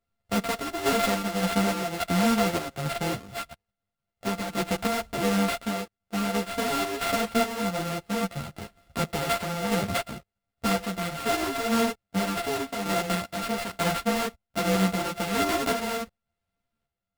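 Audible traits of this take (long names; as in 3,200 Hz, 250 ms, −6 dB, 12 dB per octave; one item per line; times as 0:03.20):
a buzz of ramps at a fixed pitch in blocks of 64 samples
sample-and-hold tremolo
aliases and images of a low sample rate 6,200 Hz, jitter 20%
a shimmering, thickened sound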